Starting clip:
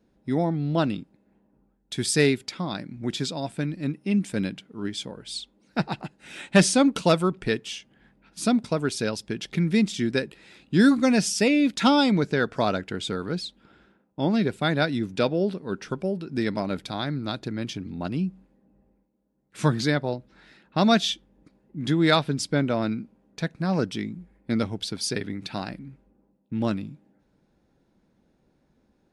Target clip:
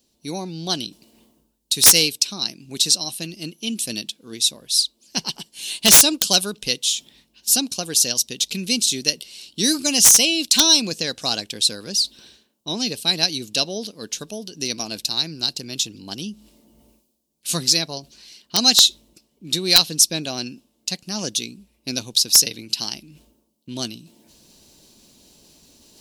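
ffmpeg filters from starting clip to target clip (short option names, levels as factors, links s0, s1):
-af "areverse,acompressor=mode=upward:threshold=0.0126:ratio=2.5,areverse,asetrate=49392,aresample=44100,aexciter=amount=9.8:drive=6.4:freq=2800,aeval=exprs='(mod(0.596*val(0)+1,2)-1)/0.596':c=same,volume=0.531"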